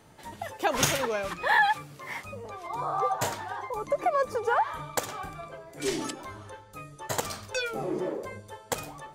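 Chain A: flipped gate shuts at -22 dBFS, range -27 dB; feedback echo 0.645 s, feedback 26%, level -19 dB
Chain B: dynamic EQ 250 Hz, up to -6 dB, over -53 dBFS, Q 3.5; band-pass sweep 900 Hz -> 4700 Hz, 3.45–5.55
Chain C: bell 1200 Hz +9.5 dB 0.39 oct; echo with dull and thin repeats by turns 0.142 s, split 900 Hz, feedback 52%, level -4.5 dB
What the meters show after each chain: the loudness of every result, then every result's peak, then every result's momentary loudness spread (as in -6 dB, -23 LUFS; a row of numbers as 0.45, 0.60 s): -40.5, -35.5, -26.5 LUFS; -16.0, -17.0, -8.5 dBFS; 11, 16, 16 LU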